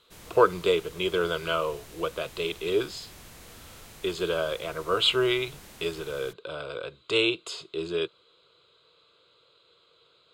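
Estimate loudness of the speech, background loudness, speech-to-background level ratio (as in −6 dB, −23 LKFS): −28.0 LKFS, −47.5 LKFS, 19.5 dB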